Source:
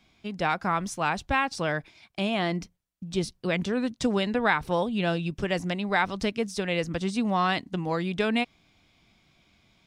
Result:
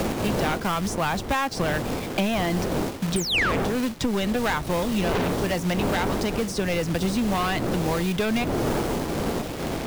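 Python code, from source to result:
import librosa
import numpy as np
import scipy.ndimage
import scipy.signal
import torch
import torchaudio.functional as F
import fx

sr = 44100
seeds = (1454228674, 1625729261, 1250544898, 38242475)

y = fx.dmg_wind(x, sr, seeds[0], corner_hz=460.0, level_db=-29.0)
y = fx.quant_companded(y, sr, bits=4)
y = fx.spec_paint(y, sr, seeds[1], shape='fall', start_s=3.16, length_s=0.36, low_hz=1000.0, high_hz=9500.0, level_db=-20.0)
y = 10.0 ** (-24.0 / 20.0) * np.tanh(y / 10.0 ** (-24.0 / 20.0))
y = fx.band_squash(y, sr, depth_pct=100)
y = F.gain(torch.from_numpy(y), 4.5).numpy()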